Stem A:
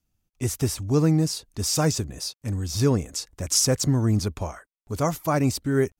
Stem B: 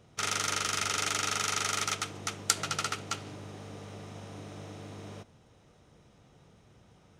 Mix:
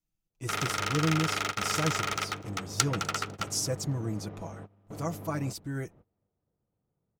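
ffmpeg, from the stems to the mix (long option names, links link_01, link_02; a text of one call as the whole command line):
ffmpeg -i stem1.wav -i stem2.wav -filter_complex "[0:a]aecho=1:1:6.1:0.68,volume=-12dB,asplit=2[link_01][link_02];[1:a]adynamicsmooth=sensitivity=4.5:basefreq=1100,adelay=300,volume=2dB,asplit=2[link_03][link_04];[link_04]volume=-24dB[link_05];[link_02]apad=whole_len=330489[link_06];[link_03][link_06]sidechaingate=range=-33dB:threshold=-56dB:ratio=16:detection=peak[link_07];[link_05]aecho=0:1:250|500|750|1000|1250:1|0.36|0.13|0.0467|0.0168[link_08];[link_01][link_07][link_08]amix=inputs=3:normalize=0" out.wav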